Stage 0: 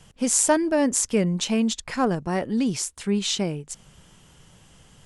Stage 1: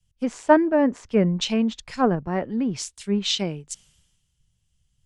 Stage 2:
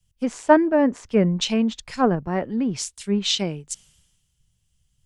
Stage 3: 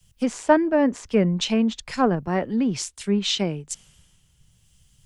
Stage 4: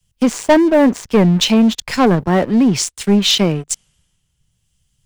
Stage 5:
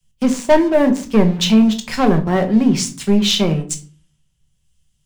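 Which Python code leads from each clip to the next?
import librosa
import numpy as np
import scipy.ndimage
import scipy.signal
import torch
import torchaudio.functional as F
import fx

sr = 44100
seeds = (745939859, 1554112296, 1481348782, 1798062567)

y1 = fx.env_lowpass_down(x, sr, base_hz=2200.0, full_db=-19.0)
y1 = fx.band_widen(y1, sr, depth_pct=100)
y2 = fx.high_shelf(y1, sr, hz=9300.0, db=6.0)
y2 = F.gain(torch.from_numpy(y2), 1.0).numpy()
y3 = fx.band_squash(y2, sr, depth_pct=40)
y4 = fx.leveller(y3, sr, passes=3)
y5 = fx.room_shoebox(y4, sr, seeds[0], volume_m3=270.0, walls='furnished', distance_m=1.1)
y5 = F.gain(torch.from_numpy(y5), -4.0).numpy()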